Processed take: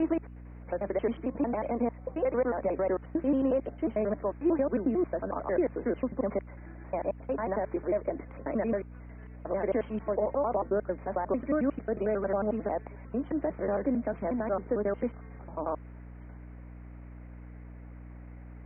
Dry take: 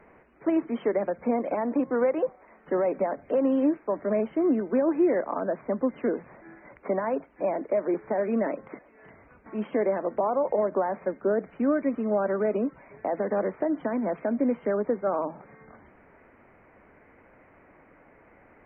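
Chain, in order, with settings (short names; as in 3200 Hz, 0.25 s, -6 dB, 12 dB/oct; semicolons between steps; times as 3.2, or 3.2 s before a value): slices in reverse order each 90 ms, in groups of 7; hum 60 Hz, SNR 14 dB; gain -3.5 dB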